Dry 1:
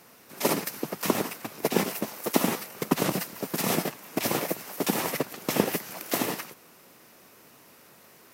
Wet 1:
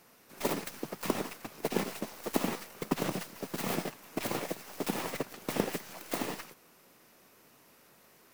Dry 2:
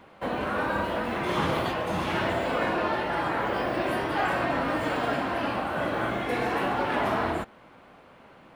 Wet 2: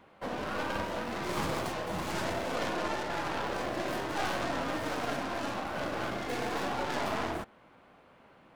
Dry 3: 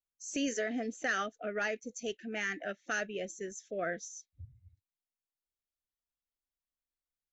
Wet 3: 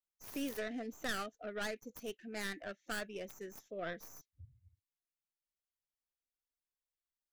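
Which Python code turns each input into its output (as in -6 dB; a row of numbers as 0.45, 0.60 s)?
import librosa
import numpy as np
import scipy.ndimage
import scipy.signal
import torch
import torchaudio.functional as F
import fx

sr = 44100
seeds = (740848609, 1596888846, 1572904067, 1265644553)

y = fx.tracing_dist(x, sr, depth_ms=0.27)
y = y * 10.0 ** (-6.5 / 20.0)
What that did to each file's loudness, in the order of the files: -7.0, -6.5, -6.0 LU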